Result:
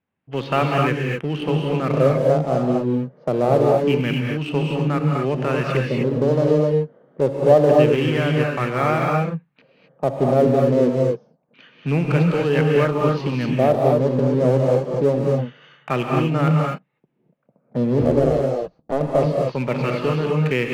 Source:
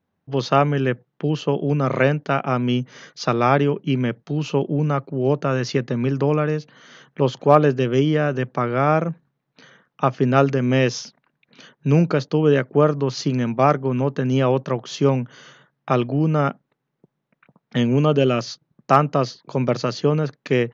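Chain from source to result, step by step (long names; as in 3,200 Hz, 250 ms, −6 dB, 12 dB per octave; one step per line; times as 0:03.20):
0:18.01–0:19.01: sub-harmonics by changed cycles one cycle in 2, muted
auto-filter low-pass square 0.26 Hz 590–2,600 Hz
in parallel at −9 dB: fuzz pedal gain 21 dB, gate −27 dBFS
on the sum: reverb whose tail is shaped and stops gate 280 ms rising, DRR −0.5 dB
level −6.5 dB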